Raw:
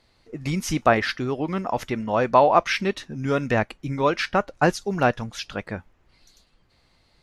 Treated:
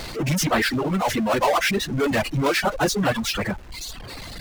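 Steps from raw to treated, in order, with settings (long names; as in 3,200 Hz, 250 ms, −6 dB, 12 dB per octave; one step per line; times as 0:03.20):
time stretch by phase vocoder 0.61×
power curve on the samples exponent 0.35
reverb reduction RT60 1.3 s
level −5.5 dB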